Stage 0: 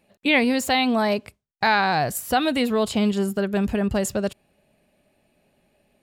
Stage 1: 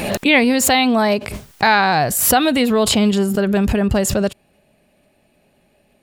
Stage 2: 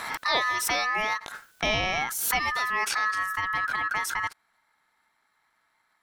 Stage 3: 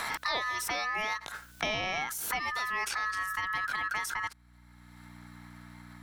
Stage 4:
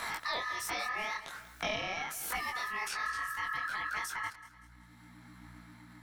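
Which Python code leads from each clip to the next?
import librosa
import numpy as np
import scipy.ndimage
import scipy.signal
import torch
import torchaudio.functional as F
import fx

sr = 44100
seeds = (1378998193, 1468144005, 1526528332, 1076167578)

y1 = fx.pre_swell(x, sr, db_per_s=43.0)
y1 = y1 * librosa.db_to_amplitude(5.5)
y2 = y1 * np.sin(2.0 * np.pi * 1500.0 * np.arange(len(y1)) / sr)
y2 = y2 * librosa.db_to_amplitude(-9.0)
y3 = fx.add_hum(y2, sr, base_hz=60, snr_db=29)
y3 = fx.band_squash(y3, sr, depth_pct=70)
y3 = y3 * librosa.db_to_amplitude(-6.0)
y4 = fx.echo_feedback(y3, sr, ms=190, feedback_pct=46, wet_db=-16.5)
y4 = fx.detune_double(y4, sr, cents=44)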